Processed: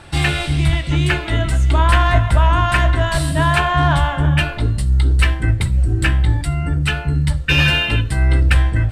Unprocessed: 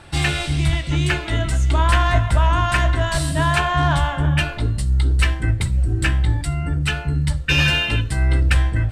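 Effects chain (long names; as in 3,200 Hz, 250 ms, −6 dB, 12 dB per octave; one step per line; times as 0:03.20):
dynamic equaliser 6,300 Hz, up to −6 dB, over −43 dBFS, Q 1.4
level +3 dB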